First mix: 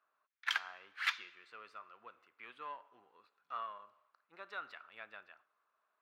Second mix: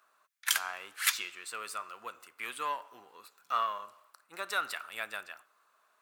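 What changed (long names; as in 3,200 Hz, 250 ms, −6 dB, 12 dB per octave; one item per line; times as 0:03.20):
speech +10.0 dB
master: remove high-frequency loss of the air 270 metres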